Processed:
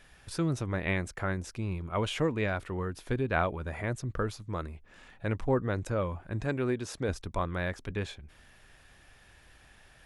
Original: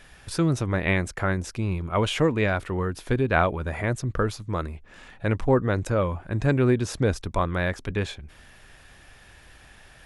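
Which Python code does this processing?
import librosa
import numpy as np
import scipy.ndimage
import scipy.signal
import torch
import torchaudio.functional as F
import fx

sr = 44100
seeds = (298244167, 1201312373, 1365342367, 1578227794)

y = fx.low_shelf(x, sr, hz=170.0, db=-9.0, at=(6.44, 7.09))
y = y * 10.0 ** (-7.0 / 20.0)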